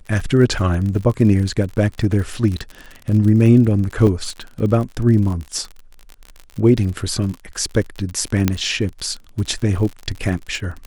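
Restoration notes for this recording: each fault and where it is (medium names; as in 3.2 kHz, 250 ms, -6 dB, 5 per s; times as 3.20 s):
crackle 46 per s -25 dBFS
4.07 s: dropout 2.2 ms
8.48 s: pop -2 dBFS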